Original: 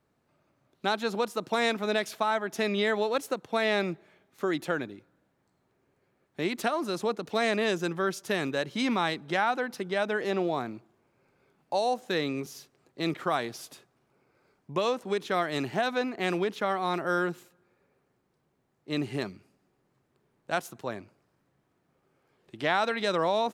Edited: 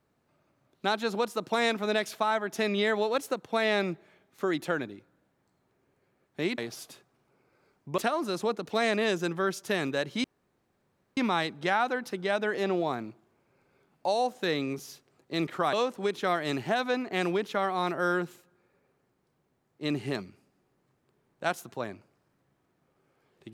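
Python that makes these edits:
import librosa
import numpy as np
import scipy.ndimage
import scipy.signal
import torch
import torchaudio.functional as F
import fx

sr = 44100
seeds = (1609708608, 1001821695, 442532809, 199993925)

y = fx.edit(x, sr, fx.insert_room_tone(at_s=8.84, length_s=0.93),
    fx.move(start_s=13.4, length_s=1.4, to_s=6.58), tone=tone)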